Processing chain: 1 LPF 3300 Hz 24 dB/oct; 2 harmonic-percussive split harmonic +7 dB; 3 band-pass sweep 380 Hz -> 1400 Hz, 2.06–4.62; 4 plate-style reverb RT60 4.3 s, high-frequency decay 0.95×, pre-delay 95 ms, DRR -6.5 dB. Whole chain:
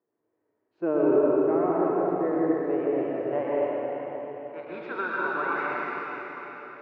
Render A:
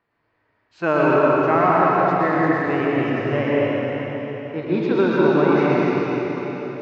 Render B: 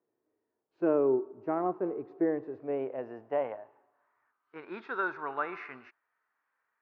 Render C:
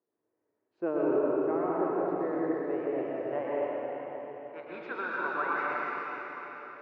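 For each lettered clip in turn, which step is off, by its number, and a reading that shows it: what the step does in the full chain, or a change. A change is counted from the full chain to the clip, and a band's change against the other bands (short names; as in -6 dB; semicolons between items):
3, 125 Hz band +9.5 dB; 4, momentary loudness spread change +3 LU; 2, 2 kHz band +2.5 dB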